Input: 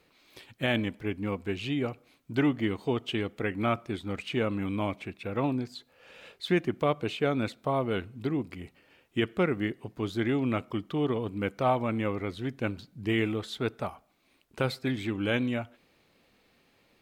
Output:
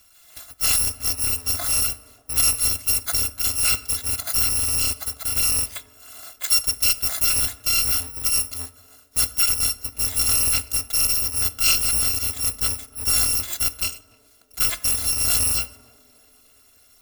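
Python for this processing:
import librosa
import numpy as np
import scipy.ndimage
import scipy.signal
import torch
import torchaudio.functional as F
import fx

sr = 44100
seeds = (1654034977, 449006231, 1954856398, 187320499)

p1 = fx.bit_reversed(x, sr, seeds[0], block=256)
p2 = 10.0 ** (-29.0 / 20.0) * (np.abs((p1 / 10.0 ** (-29.0 / 20.0) + 3.0) % 4.0 - 2.0) - 1.0)
p3 = p1 + (p2 * librosa.db_to_amplitude(-3.5))
p4 = fx.echo_banded(p3, sr, ms=294, feedback_pct=67, hz=400.0, wet_db=-17.5)
p5 = fx.rev_fdn(p4, sr, rt60_s=1.1, lf_ratio=1.0, hf_ratio=0.4, size_ms=31.0, drr_db=14.5)
y = p5 * librosa.db_to_amplitude(6.0)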